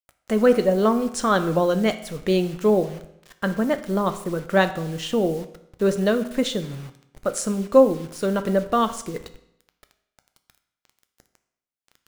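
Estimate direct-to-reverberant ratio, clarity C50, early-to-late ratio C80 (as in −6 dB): 9.0 dB, 13.0 dB, 15.5 dB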